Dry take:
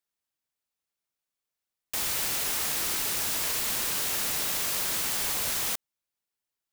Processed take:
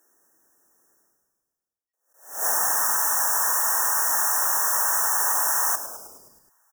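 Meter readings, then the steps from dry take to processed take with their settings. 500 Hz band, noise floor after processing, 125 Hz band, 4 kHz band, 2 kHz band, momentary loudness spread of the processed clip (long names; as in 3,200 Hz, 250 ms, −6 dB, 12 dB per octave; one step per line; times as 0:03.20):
+3.5 dB, below −85 dBFS, below −10 dB, −4.5 dB, +5.0 dB, 7 LU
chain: high-pass filter sweep 320 Hz → 930 Hz, 0:01.47–0:02.78
noise gate with hold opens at −18 dBFS
reversed playback
upward compression, threshold −40 dBFS
reversed playback
brick-wall band-stop 1,900–5,400 Hz
echo with shifted repeats 105 ms, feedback 59%, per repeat −110 Hz, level −11.5 dB
level that may rise only so fast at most 130 dB per second
level +6.5 dB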